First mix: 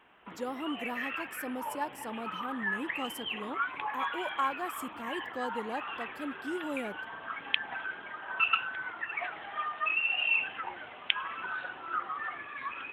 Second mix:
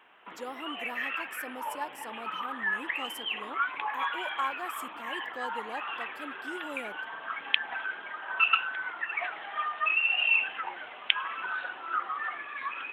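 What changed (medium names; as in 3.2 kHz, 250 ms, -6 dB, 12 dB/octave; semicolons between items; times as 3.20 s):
background +3.5 dB; master: add high-pass 540 Hz 6 dB/octave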